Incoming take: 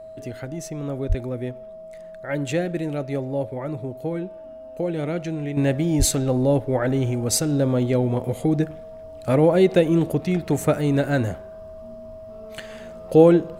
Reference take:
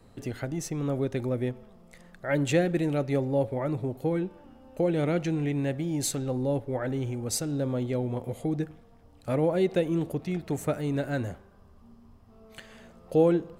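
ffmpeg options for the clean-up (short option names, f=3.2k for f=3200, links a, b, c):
-filter_complex "[0:a]bandreject=f=640:w=30,asplit=3[a][b][c];[a]afade=t=out:st=1.08:d=0.02[d];[b]highpass=f=140:w=0.5412,highpass=f=140:w=1.3066,afade=t=in:st=1.08:d=0.02,afade=t=out:st=1.2:d=0.02[e];[c]afade=t=in:st=1.2:d=0.02[f];[d][e][f]amix=inputs=3:normalize=0,asplit=3[g][h][i];[g]afade=t=out:st=5.98:d=0.02[j];[h]highpass=f=140:w=0.5412,highpass=f=140:w=1.3066,afade=t=in:st=5.98:d=0.02,afade=t=out:st=6.1:d=0.02[k];[i]afade=t=in:st=6.1:d=0.02[l];[j][k][l]amix=inputs=3:normalize=0,asetnsamples=n=441:p=0,asendcmd='5.57 volume volume -8.5dB',volume=0dB"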